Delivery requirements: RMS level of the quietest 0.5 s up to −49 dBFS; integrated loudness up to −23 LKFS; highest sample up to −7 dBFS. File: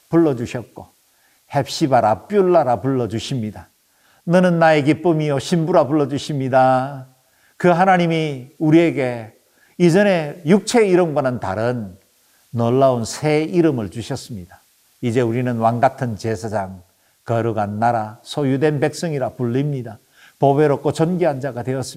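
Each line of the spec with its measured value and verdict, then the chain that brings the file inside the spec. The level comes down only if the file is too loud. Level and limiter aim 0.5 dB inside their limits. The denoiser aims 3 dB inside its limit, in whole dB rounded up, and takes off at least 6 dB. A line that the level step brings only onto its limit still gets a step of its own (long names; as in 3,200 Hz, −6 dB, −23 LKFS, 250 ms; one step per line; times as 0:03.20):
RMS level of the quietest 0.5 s −58 dBFS: in spec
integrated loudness −18.0 LKFS: out of spec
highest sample −2.5 dBFS: out of spec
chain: level −5.5 dB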